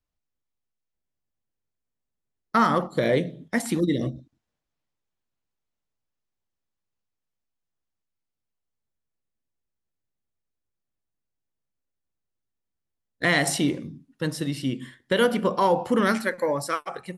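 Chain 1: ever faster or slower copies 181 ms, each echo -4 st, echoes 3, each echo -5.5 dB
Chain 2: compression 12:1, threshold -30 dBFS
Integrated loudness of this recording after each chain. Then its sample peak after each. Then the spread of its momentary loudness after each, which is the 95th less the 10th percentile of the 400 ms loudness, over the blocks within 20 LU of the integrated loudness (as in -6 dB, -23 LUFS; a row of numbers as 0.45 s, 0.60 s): -25.5 LUFS, -35.5 LUFS; -8.5 dBFS, -15.5 dBFS; 19 LU, 5 LU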